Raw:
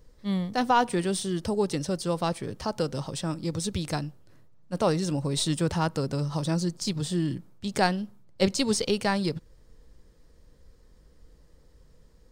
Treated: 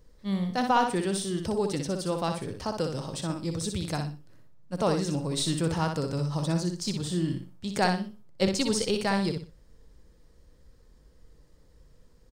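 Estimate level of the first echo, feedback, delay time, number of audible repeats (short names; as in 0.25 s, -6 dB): -6.0 dB, 27%, 61 ms, 3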